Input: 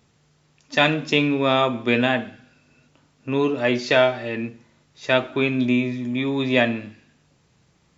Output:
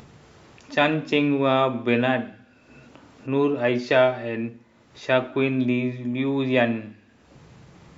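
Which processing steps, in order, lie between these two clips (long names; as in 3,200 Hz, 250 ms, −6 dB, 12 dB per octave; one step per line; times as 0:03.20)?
high-shelf EQ 3,000 Hz −11 dB
mains-hum notches 50/100/150/200/250 Hz
upward compression, threshold −35 dBFS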